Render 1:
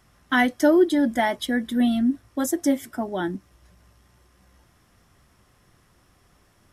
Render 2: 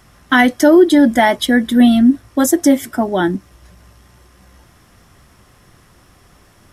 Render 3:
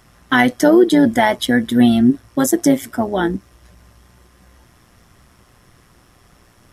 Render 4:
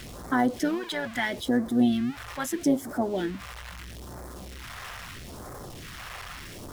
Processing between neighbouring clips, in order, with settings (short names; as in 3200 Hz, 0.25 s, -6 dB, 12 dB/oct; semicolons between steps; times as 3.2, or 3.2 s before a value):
maximiser +12 dB; gain -1 dB
AM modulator 120 Hz, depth 35%
zero-crossing step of -22.5 dBFS; phaser stages 2, 0.77 Hz, lowest notch 270–2700 Hz; tone controls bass -8 dB, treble -11 dB; gain -6.5 dB